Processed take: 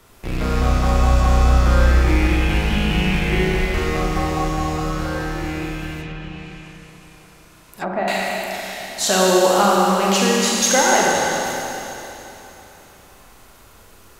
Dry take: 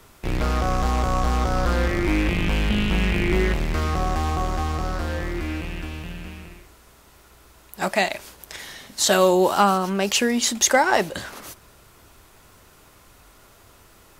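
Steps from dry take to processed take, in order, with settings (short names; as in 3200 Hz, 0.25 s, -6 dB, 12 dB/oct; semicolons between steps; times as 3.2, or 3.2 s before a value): Schroeder reverb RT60 3.3 s, combs from 32 ms, DRR -4 dB; 6.01–8.08 treble ducked by the level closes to 1100 Hz, closed at -20.5 dBFS; gain -1.5 dB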